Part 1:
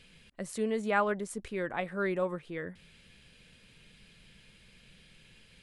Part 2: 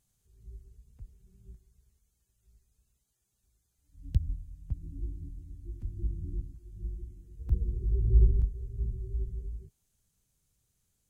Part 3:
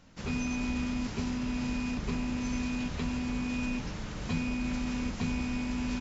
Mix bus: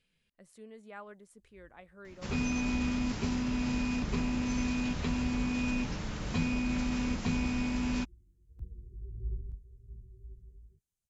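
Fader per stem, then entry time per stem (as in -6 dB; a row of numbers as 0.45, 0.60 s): -19.0, -15.5, +1.0 dB; 0.00, 1.10, 2.05 s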